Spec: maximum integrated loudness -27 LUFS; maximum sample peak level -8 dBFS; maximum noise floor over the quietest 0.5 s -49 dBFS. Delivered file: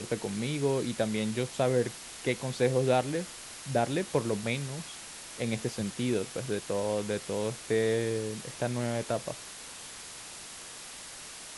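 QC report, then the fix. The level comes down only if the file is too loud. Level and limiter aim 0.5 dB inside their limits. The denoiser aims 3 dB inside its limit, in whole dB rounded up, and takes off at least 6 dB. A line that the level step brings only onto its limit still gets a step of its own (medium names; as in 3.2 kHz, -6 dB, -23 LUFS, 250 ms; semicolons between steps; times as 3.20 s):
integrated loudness -32.0 LUFS: pass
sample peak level -12.5 dBFS: pass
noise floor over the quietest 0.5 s -45 dBFS: fail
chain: noise reduction 7 dB, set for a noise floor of -45 dBFS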